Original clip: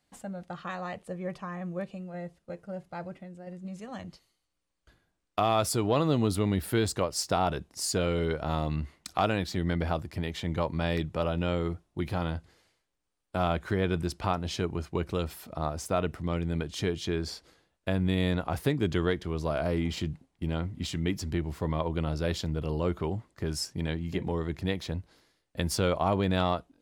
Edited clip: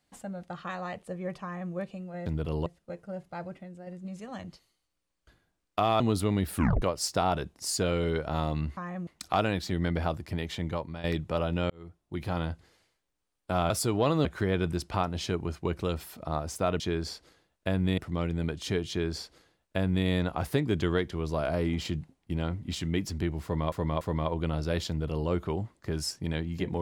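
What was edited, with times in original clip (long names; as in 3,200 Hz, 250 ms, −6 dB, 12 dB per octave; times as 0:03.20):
0:01.43–0:01.73: duplicate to 0:08.92
0:05.60–0:06.15: move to 0:13.55
0:06.68: tape stop 0.29 s
0:10.41–0:10.89: fade out, to −14 dB
0:11.55–0:12.22: fade in
0:17.01–0:18.19: duplicate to 0:16.10
0:21.55–0:21.84: repeat, 3 plays
0:22.43–0:22.83: duplicate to 0:02.26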